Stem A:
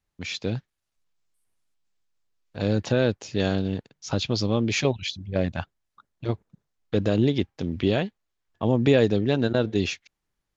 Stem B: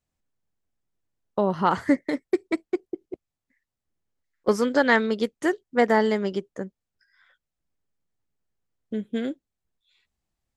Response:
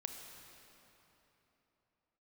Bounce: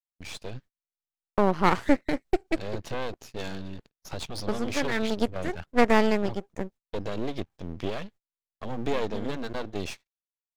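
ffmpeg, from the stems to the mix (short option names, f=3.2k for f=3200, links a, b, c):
-filter_complex "[0:a]volume=-3.5dB,asplit=2[a][b];[1:a]volume=2.5dB[c];[b]apad=whole_len=466046[d];[c][d]sidechaincompress=threshold=-35dB:ratio=8:attack=43:release=139[e];[a][e]amix=inputs=2:normalize=0,agate=range=-33dB:threshold=-43dB:ratio=16:detection=peak,aeval=exprs='max(val(0),0)':c=same"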